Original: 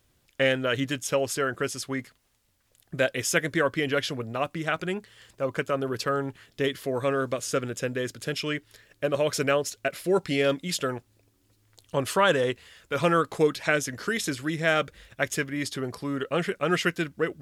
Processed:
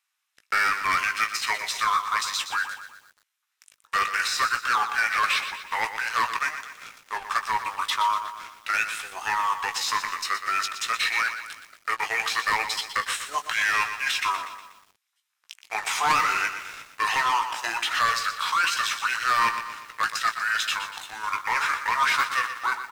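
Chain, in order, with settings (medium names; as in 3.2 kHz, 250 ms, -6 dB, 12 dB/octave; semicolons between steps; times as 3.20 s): high-pass 1.3 kHz 24 dB/octave; band-stop 6 kHz, Q 20; de-esser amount 75%; peaking EQ 2.5 kHz +3.5 dB 2.5 oct; waveshaping leveller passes 3; in parallel at +1 dB: level held to a coarse grid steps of 15 dB; on the sum: saturation -9.5 dBFS, distortion -22 dB; tape speed -24%; doubling 18 ms -8 dB; bit-crushed delay 121 ms, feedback 55%, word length 7-bit, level -9.5 dB; trim -5.5 dB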